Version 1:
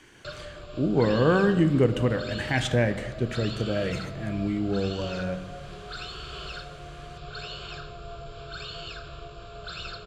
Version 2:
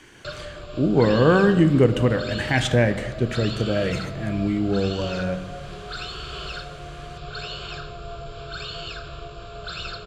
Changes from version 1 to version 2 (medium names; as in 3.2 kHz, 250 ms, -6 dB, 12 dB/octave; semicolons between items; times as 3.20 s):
speech +4.5 dB; background +4.5 dB